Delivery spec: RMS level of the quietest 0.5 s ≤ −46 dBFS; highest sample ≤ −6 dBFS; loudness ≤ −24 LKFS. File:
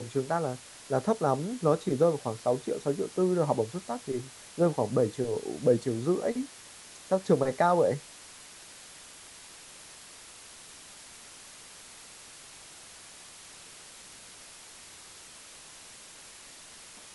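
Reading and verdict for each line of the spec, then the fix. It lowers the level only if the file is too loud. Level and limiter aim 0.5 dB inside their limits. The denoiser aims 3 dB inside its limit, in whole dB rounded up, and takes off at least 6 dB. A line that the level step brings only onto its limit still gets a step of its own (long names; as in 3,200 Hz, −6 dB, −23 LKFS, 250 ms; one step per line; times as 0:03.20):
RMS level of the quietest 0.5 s −49 dBFS: in spec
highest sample −10.5 dBFS: in spec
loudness −29.0 LKFS: in spec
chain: no processing needed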